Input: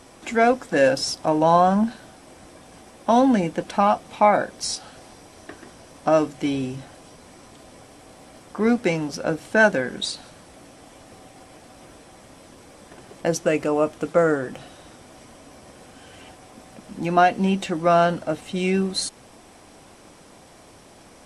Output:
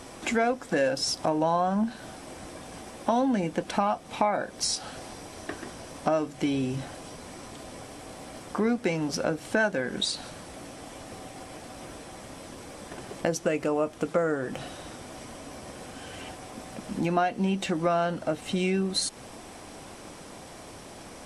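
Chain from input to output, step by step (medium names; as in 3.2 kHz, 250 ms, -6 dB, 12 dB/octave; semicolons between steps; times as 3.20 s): compression 3:1, threshold -30 dBFS, peak gain reduction 14.5 dB; trim +4 dB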